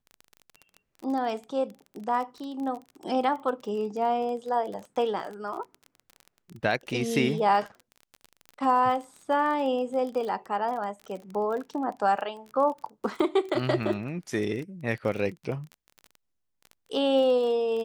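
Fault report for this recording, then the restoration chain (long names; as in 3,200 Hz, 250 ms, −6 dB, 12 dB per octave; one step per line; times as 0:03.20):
surface crackle 26 per second −34 dBFS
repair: click removal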